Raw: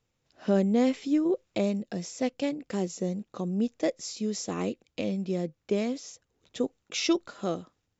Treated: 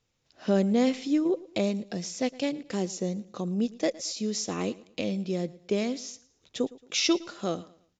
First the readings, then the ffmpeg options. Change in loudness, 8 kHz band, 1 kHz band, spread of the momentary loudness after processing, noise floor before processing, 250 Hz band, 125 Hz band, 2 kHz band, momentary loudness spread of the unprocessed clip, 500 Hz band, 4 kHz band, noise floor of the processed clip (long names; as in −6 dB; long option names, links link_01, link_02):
+0.5 dB, can't be measured, +0.5 dB, 9 LU, −79 dBFS, 0.0 dB, 0.0 dB, +2.5 dB, 9 LU, 0.0 dB, +4.5 dB, −73 dBFS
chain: -af "equalizer=frequency=4800:width=0.62:gain=5,aecho=1:1:112|224|336:0.0944|0.0321|0.0109,aresample=16000,aresample=44100"